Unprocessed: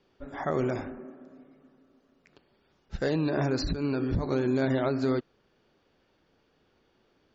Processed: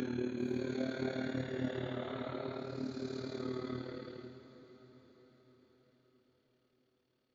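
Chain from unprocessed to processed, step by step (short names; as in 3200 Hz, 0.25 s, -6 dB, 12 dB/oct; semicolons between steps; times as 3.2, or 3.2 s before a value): Doppler pass-by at 3.16, 8 m/s, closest 4.6 m; EQ curve 310 Hz 0 dB, 1200 Hz -7 dB, 3500 Hz -3 dB; Paulstretch 5.1×, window 0.25 s, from 4.38; AM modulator 37 Hz, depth 55%; tilt shelf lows -5 dB, about 850 Hz; on a send: diffused feedback echo 0.513 s, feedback 55%, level -14 dB; on the sum: gain +4 dB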